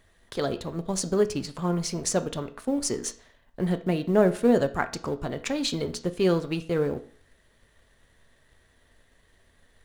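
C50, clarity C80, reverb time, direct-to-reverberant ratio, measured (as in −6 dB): 15.5 dB, 19.5 dB, 0.50 s, 9.0 dB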